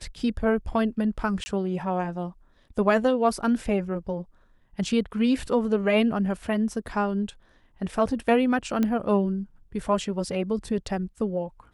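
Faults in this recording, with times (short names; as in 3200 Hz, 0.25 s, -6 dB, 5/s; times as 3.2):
1.44–1.46 gap 20 ms
8.83 pop -13 dBFS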